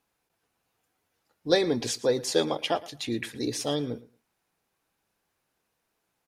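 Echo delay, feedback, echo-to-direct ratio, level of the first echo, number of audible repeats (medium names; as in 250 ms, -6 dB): 113 ms, 18%, -19.5 dB, -19.5 dB, 2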